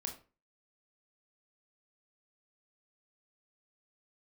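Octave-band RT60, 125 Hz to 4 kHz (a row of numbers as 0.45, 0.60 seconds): 0.40, 0.40, 0.35, 0.35, 0.30, 0.25 seconds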